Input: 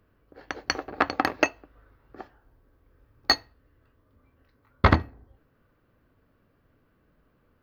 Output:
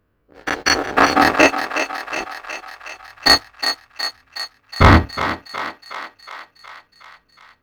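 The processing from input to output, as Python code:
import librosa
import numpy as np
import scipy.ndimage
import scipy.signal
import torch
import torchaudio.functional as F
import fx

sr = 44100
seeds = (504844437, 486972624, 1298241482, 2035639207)

y = fx.spec_dilate(x, sr, span_ms=60)
y = fx.leveller(y, sr, passes=2)
y = fx.echo_thinned(y, sr, ms=366, feedback_pct=66, hz=510.0, wet_db=-8)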